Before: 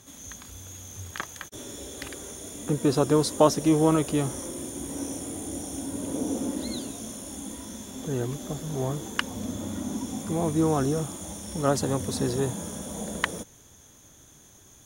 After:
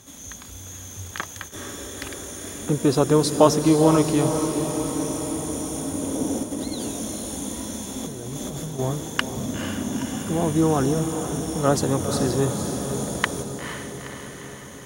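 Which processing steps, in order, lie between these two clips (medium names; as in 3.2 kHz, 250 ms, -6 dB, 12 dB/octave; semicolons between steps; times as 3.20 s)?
6.43–8.79 s: compressor with a negative ratio -35 dBFS, ratio -1; echo that smears into a reverb 474 ms, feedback 65%, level -8 dB; trim +3.5 dB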